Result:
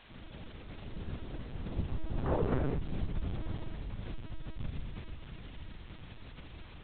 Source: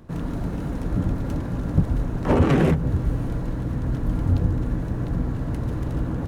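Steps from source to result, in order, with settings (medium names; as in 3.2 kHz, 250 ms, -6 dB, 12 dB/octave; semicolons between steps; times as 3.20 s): Doppler pass-by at 2.39 s, 25 m/s, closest 1.9 m; low-pass 1.1 kHz 6 dB/octave; peaking EQ 240 Hz -11.5 dB 0.6 oct; compression 10:1, threshold -39 dBFS, peak gain reduction 20.5 dB; added noise white -62 dBFS; speed mistake 48 kHz file played as 44.1 kHz; LPC vocoder at 8 kHz pitch kept; trim +11 dB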